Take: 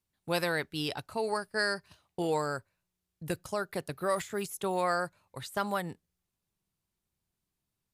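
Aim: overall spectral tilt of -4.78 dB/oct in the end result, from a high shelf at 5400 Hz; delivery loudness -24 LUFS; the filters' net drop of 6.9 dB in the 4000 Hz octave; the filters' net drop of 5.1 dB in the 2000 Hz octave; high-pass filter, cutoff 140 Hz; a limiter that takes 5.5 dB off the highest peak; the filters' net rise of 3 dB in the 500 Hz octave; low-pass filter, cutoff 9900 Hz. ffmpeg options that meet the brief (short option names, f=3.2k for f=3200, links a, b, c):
-af "highpass=140,lowpass=9.9k,equalizer=f=500:t=o:g=4,equalizer=f=2k:t=o:g=-6,equalizer=f=4k:t=o:g=-9,highshelf=f=5.4k:g=4.5,volume=10dB,alimiter=limit=-11dB:level=0:latency=1"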